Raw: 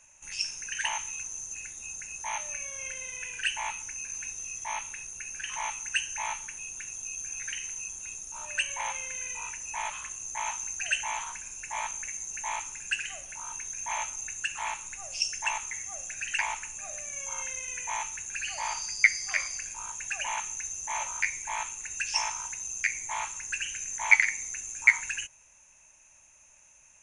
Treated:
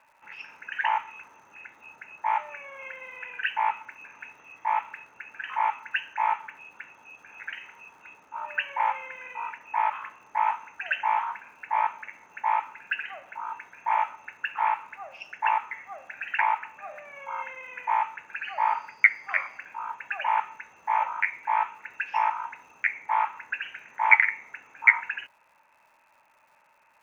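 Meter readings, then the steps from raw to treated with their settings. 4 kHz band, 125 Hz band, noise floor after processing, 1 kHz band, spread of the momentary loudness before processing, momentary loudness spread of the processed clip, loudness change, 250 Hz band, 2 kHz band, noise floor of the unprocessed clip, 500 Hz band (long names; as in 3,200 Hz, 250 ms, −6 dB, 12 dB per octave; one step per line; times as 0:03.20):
−8.0 dB, below −10 dB, −62 dBFS, +11.0 dB, 8 LU, 18 LU, +3.5 dB, can't be measured, +2.5 dB, −58 dBFS, +5.5 dB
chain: loudspeaker in its box 280–2,200 Hz, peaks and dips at 360 Hz −3 dB, 880 Hz +7 dB, 1,300 Hz +6 dB
surface crackle 210 per second −60 dBFS
level +4.5 dB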